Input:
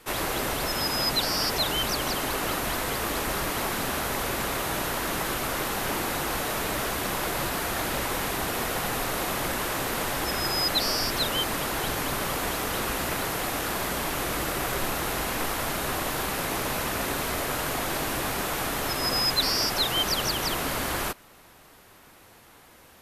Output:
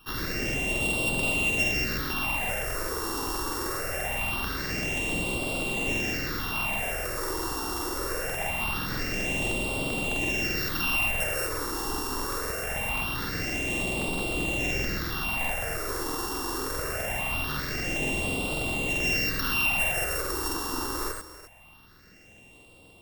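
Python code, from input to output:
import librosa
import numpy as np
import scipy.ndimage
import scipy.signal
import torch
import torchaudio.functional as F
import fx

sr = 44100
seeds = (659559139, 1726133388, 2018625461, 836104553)

p1 = np.r_[np.sort(x[:len(x) // 16 * 16].reshape(-1, 16), axis=1).ravel(), x[len(x) // 16 * 16:]]
p2 = fx.phaser_stages(p1, sr, stages=6, low_hz=160.0, high_hz=1700.0, hz=0.23, feedback_pct=25)
p3 = p2 + fx.echo_multitap(p2, sr, ms=(62, 73, 295, 322), db=(-9.0, -6.5, -18.0, -17.5), dry=0)
y = fx.buffer_crackle(p3, sr, first_s=0.45, period_s=0.13, block=2048, kind='repeat')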